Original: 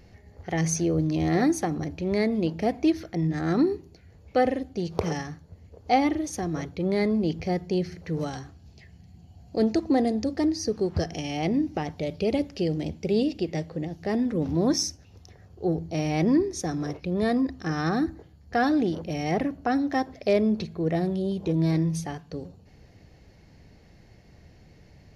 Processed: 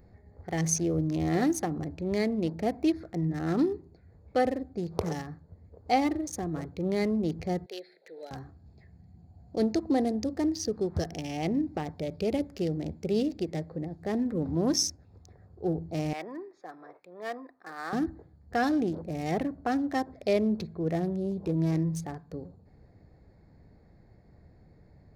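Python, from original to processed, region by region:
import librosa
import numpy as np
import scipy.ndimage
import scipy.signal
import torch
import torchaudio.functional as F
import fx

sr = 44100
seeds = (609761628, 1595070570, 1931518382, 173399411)

y = fx.chain(x, sr, fx.highpass(hz=490.0, slope=24),
    fx.peak_eq(hz=3900.0, db=11.0, octaves=0.52),
    fx.fixed_phaser(hz=2700.0, stages=4), at=(7.66, 8.31))
y = fx.chain(y, sr, fx.bandpass_edges(low_hz=760.0, high_hz=2700.0),
    fx.band_widen(depth_pct=40), at=(16.13, 17.93))
y = fx.wiener(y, sr, points=15)
y = fx.high_shelf(y, sr, hz=6700.0, db=10.5)
y = y * librosa.db_to_amplitude(-3.5)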